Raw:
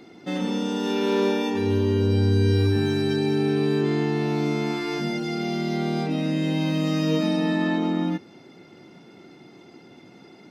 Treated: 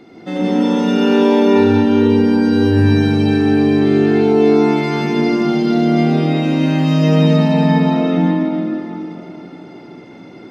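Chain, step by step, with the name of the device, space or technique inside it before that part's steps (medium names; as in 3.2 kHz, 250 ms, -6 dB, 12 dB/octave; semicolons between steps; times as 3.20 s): swimming-pool hall (reverberation RT60 3.4 s, pre-delay 75 ms, DRR -5 dB; treble shelf 3.5 kHz -7.5 dB); trim +4.5 dB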